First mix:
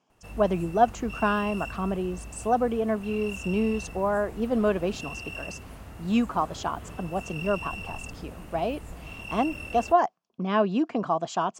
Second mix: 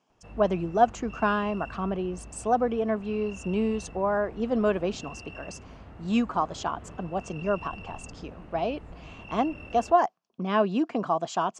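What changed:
background: add head-to-tape spacing loss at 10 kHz 28 dB
master: add low-shelf EQ 130 Hz −4.5 dB

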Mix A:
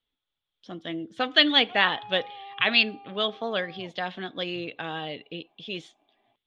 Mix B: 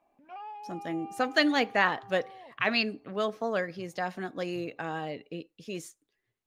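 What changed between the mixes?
background: entry −1.40 s
master: remove low-pass with resonance 3,400 Hz, resonance Q 9.1

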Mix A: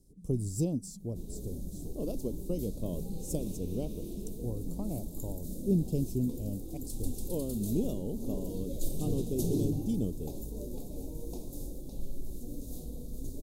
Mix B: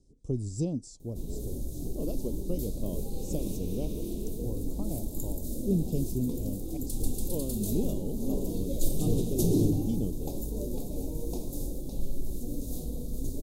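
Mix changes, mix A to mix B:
speech: add low-pass filter 7,600 Hz 24 dB per octave
first sound: muted
second sound +6.0 dB

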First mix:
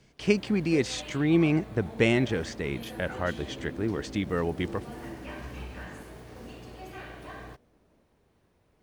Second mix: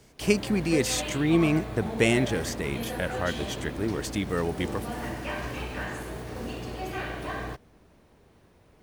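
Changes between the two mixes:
speech: remove high-frequency loss of the air 110 metres
first sound +9.0 dB

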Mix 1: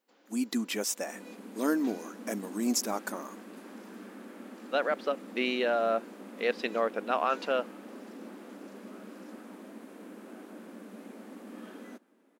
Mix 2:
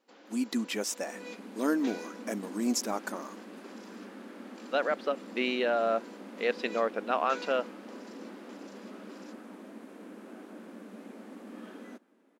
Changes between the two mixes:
first sound +9.0 dB
master: add high-shelf EQ 11,000 Hz −9.5 dB

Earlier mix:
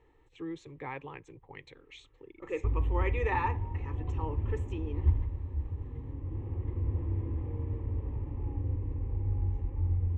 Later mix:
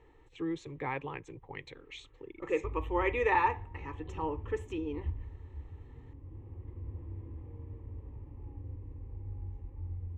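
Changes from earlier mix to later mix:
speech +4.0 dB
background −10.5 dB

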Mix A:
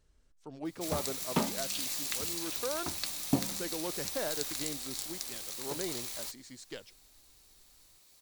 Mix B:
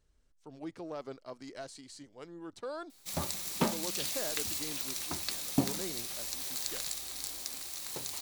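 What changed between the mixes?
speech −3.5 dB
background: entry +2.25 s

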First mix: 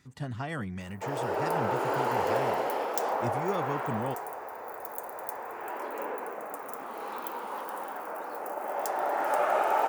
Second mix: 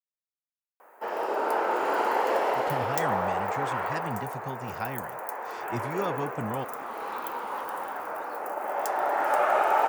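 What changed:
speech: entry +2.50 s
master: add parametric band 1,500 Hz +4.5 dB 2.4 octaves

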